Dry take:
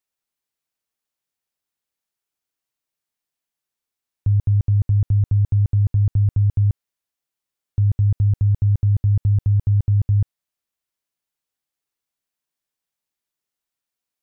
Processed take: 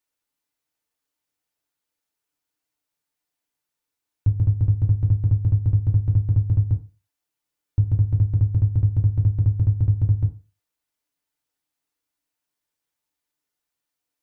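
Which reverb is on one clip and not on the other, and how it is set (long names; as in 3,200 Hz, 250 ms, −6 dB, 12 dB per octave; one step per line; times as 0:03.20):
feedback delay network reverb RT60 0.33 s, low-frequency decay 0.95×, high-frequency decay 0.5×, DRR 1.5 dB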